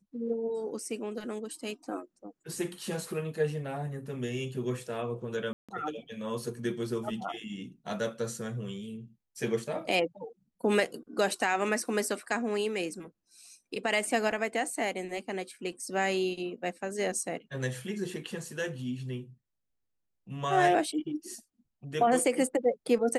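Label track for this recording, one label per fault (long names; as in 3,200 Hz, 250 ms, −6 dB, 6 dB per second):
5.530000	5.690000	drop-out 156 ms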